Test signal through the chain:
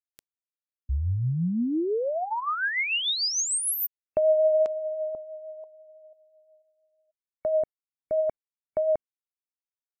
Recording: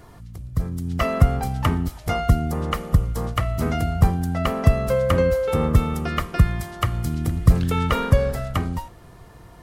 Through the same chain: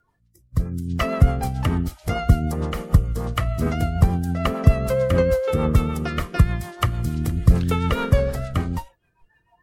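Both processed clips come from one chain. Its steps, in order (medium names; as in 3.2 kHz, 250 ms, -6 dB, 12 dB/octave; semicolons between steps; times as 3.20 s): spectral noise reduction 25 dB; rotary cabinet horn 6.7 Hz; trim +2 dB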